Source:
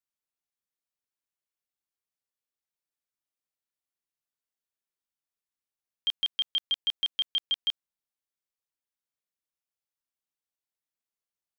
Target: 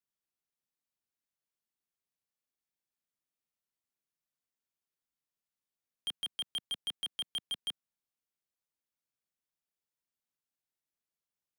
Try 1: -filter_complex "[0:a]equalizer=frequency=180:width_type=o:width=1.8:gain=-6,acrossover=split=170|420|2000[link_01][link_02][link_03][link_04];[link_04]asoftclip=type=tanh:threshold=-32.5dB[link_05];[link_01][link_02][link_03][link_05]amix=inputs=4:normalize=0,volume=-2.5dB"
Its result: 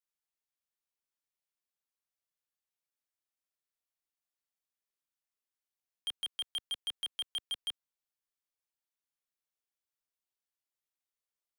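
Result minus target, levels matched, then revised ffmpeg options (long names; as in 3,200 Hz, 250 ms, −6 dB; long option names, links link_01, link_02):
250 Hz band −8.5 dB
-filter_complex "[0:a]equalizer=frequency=180:width_type=o:width=1.8:gain=5.5,acrossover=split=170|420|2000[link_01][link_02][link_03][link_04];[link_04]asoftclip=type=tanh:threshold=-32.5dB[link_05];[link_01][link_02][link_03][link_05]amix=inputs=4:normalize=0,volume=-2.5dB"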